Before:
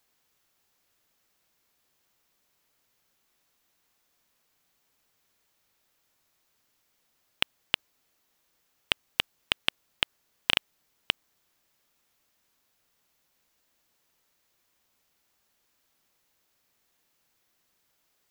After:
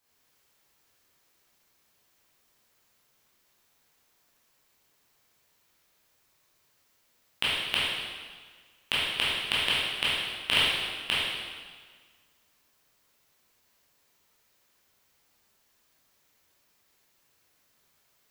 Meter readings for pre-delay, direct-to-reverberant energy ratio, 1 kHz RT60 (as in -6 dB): 7 ms, -9.5 dB, 1.6 s